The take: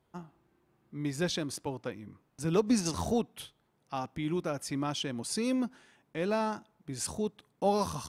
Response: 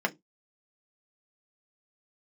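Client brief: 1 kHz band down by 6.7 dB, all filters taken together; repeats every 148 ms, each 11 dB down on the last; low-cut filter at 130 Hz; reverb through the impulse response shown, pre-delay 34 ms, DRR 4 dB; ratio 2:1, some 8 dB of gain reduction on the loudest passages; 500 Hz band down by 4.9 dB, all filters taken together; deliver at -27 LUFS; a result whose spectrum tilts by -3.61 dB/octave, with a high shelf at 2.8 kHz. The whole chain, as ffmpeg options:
-filter_complex "[0:a]highpass=130,equalizer=f=500:t=o:g=-4.5,equalizer=f=1000:t=o:g=-8,highshelf=f=2800:g=6.5,acompressor=threshold=0.0126:ratio=2,aecho=1:1:148|296|444:0.282|0.0789|0.0221,asplit=2[s0][s1];[1:a]atrim=start_sample=2205,adelay=34[s2];[s1][s2]afir=irnorm=-1:irlink=0,volume=0.211[s3];[s0][s3]amix=inputs=2:normalize=0,volume=3.55"

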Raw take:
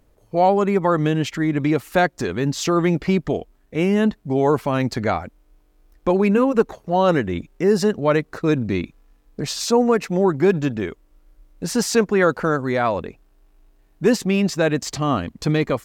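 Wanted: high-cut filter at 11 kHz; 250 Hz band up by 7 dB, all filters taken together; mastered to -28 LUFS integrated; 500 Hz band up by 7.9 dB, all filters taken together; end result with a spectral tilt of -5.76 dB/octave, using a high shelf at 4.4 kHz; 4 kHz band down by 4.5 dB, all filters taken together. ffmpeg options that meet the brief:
-af "lowpass=11000,equalizer=f=250:t=o:g=7,equalizer=f=500:t=o:g=7.5,equalizer=f=4000:t=o:g=-3,highshelf=f=4400:g=-5,volume=0.188"

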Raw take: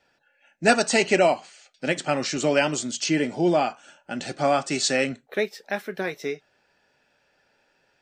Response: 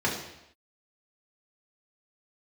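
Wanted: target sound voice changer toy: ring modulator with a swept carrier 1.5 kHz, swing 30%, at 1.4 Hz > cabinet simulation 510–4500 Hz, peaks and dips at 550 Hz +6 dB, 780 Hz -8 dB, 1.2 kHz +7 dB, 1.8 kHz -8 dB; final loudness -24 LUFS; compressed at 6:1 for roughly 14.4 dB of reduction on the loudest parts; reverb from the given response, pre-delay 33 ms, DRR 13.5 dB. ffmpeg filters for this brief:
-filter_complex "[0:a]acompressor=threshold=0.0316:ratio=6,asplit=2[s0][s1];[1:a]atrim=start_sample=2205,adelay=33[s2];[s1][s2]afir=irnorm=-1:irlink=0,volume=0.0531[s3];[s0][s3]amix=inputs=2:normalize=0,aeval=exprs='val(0)*sin(2*PI*1500*n/s+1500*0.3/1.4*sin(2*PI*1.4*n/s))':c=same,highpass=510,equalizer=f=550:t=q:w=4:g=6,equalizer=f=780:t=q:w=4:g=-8,equalizer=f=1200:t=q:w=4:g=7,equalizer=f=1800:t=q:w=4:g=-8,lowpass=f=4500:w=0.5412,lowpass=f=4500:w=1.3066,volume=4.47"

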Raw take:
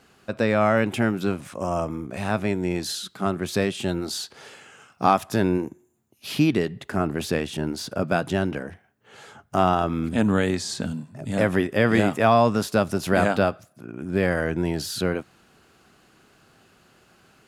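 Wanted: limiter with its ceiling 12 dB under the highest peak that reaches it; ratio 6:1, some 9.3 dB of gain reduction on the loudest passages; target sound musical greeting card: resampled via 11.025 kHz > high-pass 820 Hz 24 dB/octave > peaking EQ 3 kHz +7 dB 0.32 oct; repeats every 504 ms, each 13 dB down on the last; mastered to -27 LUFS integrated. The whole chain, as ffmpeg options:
-af "acompressor=threshold=0.0708:ratio=6,alimiter=limit=0.0794:level=0:latency=1,aecho=1:1:504|1008|1512:0.224|0.0493|0.0108,aresample=11025,aresample=44100,highpass=f=820:w=0.5412,highpass=f=820:w=1.3066,equalizer=f=3000:t=o:w=0.32:g=7,volume=3.55"

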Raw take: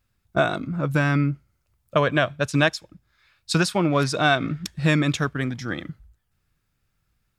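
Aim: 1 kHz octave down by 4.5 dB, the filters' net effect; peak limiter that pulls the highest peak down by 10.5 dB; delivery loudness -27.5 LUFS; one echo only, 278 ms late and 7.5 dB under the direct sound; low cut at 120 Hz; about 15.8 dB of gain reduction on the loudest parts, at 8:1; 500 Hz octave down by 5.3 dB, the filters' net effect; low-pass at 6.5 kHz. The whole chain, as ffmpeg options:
-af "highpass=120,lowpass=6500,equalizer=f=500:t=o:g=-5.5,equalizer=f=1000:t=o:g=-4.5,acompressor=threshold=0.02:ratio=8,alimiter=level_in=1.68:limit=0.0631:level=0:latency=1,volume=0.596,aecho=1:1:278:0.422,volume=4.47"

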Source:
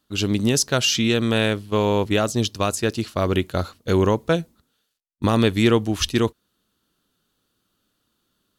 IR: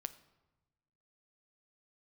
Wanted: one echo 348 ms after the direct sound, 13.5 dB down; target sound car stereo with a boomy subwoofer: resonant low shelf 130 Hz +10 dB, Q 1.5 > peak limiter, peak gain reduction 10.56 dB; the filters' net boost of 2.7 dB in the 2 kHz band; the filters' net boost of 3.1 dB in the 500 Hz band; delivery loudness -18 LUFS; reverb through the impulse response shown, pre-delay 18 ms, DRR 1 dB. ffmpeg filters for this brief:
-filter_complex "[0:a]equalizer=f=500:t=o:g=4.5,equalizer=f=2000:t=o:g=3.5,aecho=1:1:348:0.211,asplit=2[s0][s1];[1:a]atrim=start_sample=2205,adelay=18[s2];[s1][s2]afir=irnorm=-1:irlink=0,volume=1.19[s3];[s0][s3]amix=inputs=2:normalize=0,lowshelf=f=130:t=q:w=1.5:g=10,volume=1.06,alimiter=limit=0.422:level=0:latency=1"

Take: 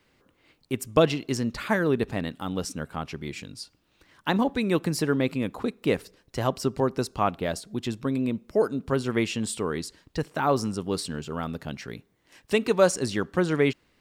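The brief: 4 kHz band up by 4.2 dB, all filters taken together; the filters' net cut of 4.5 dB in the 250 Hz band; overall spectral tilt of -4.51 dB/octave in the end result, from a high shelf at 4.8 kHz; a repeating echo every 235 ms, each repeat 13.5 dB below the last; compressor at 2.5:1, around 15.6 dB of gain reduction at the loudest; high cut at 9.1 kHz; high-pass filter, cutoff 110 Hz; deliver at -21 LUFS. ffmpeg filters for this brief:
-af "highpass=110,lowpass=9100,equalizer=f=250:t=o:g=-5.5,equalizer=f=4000:t=o:g=8.5,highshelf=f=4800:g=-6.5,acompressor=threshold=0.0112:ratio=2.5,aecho=1:1:235|470:0.211|0.0444,volume=8.41"

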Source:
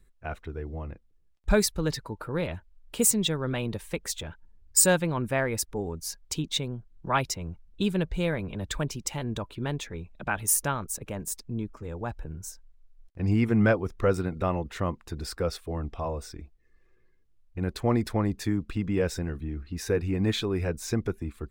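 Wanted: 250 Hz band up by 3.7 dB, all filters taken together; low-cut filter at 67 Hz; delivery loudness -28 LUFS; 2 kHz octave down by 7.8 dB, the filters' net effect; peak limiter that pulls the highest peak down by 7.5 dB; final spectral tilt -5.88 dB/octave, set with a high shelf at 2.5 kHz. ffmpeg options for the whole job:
-af "highpass=67,equalizer=f=250:t=o:g=5,equalizer=f=2000:t=o:g=-9,highshelf=f=2500:g=-5,volume=1.33,alimiter=limit=0.188:level=0:latency=1"

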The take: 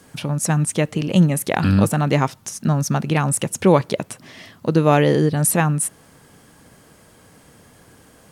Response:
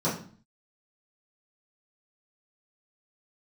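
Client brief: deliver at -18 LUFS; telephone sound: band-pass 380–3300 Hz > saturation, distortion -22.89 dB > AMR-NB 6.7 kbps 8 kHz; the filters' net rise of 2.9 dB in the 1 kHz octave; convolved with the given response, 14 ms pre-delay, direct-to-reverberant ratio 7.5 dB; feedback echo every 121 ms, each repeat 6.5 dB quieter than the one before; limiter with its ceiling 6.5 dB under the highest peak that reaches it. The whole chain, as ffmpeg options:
-filter_complex "[0:a]equalizer=f=1000:t=o:g=4,alimiter=limit=0.422:level=0:latency=1,aecho=1:1:121|242|363|484|605|726:0.473|0.222|0.105|0.0491|0.0231|0.0109,asplit=2[s0][s1];[1:a]atrim=start_sample=2205,adelay=14[s2];[s1][s2]afir=irnorm=-1:irlink=0,volume=0.119[s3];[s0][s3]amix=inputs=2:normalize=0,highpass=380,lowpass=3300,asoftclip=threshold=0.447,volume=2.11" -ar 8000 -c:a libopencore_amrnb -b:a 6700

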